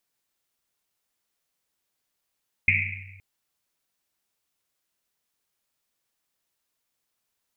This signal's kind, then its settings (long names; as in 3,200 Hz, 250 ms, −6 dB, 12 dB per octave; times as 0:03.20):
drum after Risset length 0.52 s, pitch 96 Hz, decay 1.60 s, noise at 2,300 Hz, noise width 510 Hz, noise 70%